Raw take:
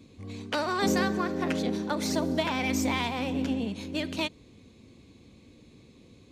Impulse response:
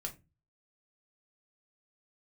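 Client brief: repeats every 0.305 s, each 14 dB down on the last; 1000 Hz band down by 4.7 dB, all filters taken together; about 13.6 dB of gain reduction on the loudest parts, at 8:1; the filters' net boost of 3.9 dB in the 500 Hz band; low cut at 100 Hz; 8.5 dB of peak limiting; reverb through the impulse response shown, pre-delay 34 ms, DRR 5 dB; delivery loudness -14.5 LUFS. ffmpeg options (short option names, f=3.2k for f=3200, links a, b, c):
-filter_complex "[0:a]highpass=100,equalizer=f=500:t=o:g=7.5,equalizer=f=1k:t=o:g=-9,acompressor=threshold=-35dB:ratio=8,alimiter=level_in=7dB:limit=-24dB:level=0:latency=1,volume=-7dB,aecho=1:1:305|610:0.2|0.0399,asplit=2[a][b];[1:a]atrim=start_sample=2205,adelay=34[c];[b][c]afir=irnorm=-1:irlink=0,volume=-4dB[d];[a][d]amix=inputs=2:normalize=0,volume=24dB"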